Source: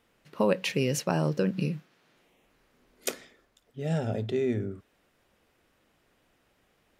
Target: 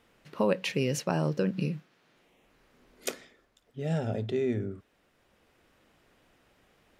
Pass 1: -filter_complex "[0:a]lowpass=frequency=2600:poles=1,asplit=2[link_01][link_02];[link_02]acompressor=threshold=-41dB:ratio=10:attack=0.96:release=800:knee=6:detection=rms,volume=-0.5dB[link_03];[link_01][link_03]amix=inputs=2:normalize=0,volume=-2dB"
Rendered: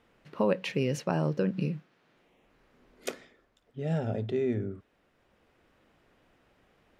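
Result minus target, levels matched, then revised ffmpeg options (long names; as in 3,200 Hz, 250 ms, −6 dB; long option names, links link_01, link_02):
8,000 Hz band −6.0 dB
-filter_complex "[0:a]lowpass=frequency=8700:poles=1,asplit=2[link_01][link_02];[link_02]acompressor=threshold=-41dB:ratio=10:attack=0.96:release=800:knee=6:detection=rms,volume=-0.5dB[link_03];[link_01][link_03]amix=inputs=2:normalize=0,volume=-2dB"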